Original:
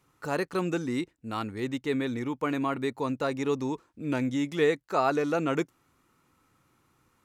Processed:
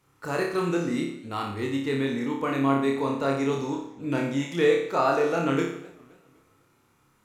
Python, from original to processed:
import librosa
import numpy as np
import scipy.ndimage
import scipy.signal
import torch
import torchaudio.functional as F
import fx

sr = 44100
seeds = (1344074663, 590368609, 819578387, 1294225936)

y = fx.room_flutter(x, sr, wall_m=5.0, rt60_s=0.62)
y = fx.echo_warbled(y, sr, ms=256, feedback_pct=44, rate_hz=2.8, cents=176, wet_db=-23.5)